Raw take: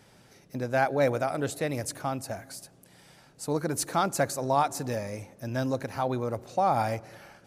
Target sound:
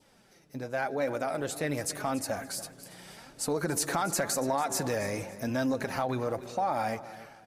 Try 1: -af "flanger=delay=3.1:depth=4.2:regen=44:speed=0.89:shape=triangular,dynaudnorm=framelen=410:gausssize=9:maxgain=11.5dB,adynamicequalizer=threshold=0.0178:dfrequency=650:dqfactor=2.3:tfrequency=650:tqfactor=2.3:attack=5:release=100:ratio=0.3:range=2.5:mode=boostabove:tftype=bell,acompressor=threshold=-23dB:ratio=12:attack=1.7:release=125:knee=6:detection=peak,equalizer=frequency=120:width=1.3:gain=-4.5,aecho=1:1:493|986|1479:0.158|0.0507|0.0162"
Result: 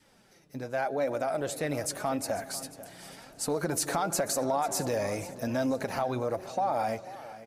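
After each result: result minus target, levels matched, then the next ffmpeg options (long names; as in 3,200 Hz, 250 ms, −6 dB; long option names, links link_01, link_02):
echo 209 ms late; 2,000 Hz band −2.5 dB
-af "flanger=delay=3.1:depth=4.2:regen=44:speed=0.89:shape=triangular,dynaudnorm=framelen=410:gausssize=9:maxgain=11.5dB,adynamicequalizer=threshold=0.0178:dfrequency=650:dqfactor=2.3:tfrequency=650:tqfactor=2.3:attack=5:release=100:ratio=0.3:range=2.5:mode=boostabove:tftype=bell,acompressor=threshold=-23dB:ratio=12:attack=1.7:release=125:knee=6:detection=peak,equalizer=frequency=120:width=1.3:gain=-4.5,aecho=1:1:284|568|852:0.158|0.0507|0.0162"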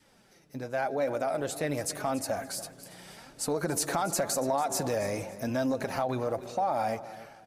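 2,000 Hz band −2.5 dB
-af "flanger=delay=3.1:depth=4.2:regen=44:speed=0.89:shape=triangular,dynaudnorm=framelen=410:gausssize=9:maxgain=11.5dB,adynamicequalizer=threshold=0.0178:dfrequency=1800:dqfactor=2.3:tfrequency=1800:tqfactor=2.3:attack=5:release=100:ratio=0.3:range=2.5:mode=boostabove:tftype=bell,acompressor=threshold=-23dB:ratio=12:attack=1.7:release=125:knee=6:detection=peak,equalizer=frequency=120:width=1.3:gain=-4.5,aecho=1:1:284|568|852:0.158|0.0507|0.0162"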